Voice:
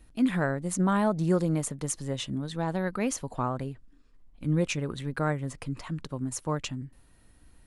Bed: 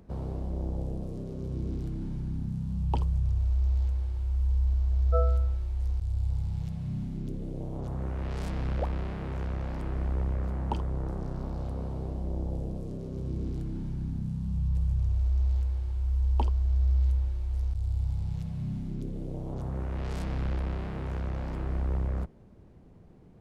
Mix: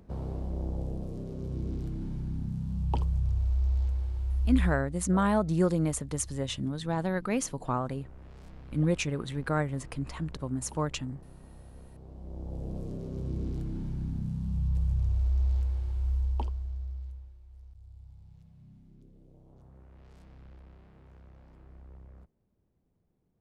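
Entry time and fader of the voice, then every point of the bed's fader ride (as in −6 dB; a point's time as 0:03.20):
4.30 s, −0.5 dB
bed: 0:04.64 −1 dB
0:04.90 −16.5 dB
0:11.92 −16.5 dB
0:12.78 −0.5 dB
0:16.10 −0.5 dB
0:17.39 −21 dB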